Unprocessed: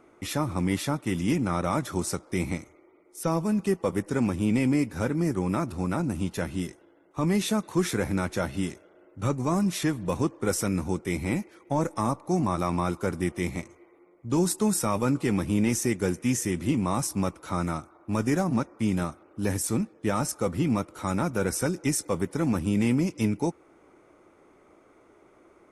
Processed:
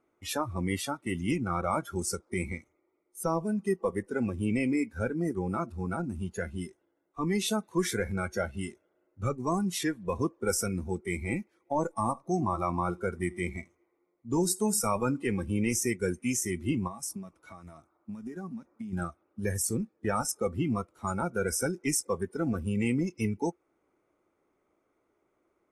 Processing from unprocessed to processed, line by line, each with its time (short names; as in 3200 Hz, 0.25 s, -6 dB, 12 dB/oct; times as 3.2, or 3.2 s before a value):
11.95–15.26 echo 84 ms -18.5 dB
16.87–18.93 compressor 12:1, threshold -29 dBFS
whole clip: spectral noise reduction 17 dB; dynamic EQ 200 Hz, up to -5 dB, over -37 dBFS, Q 0.75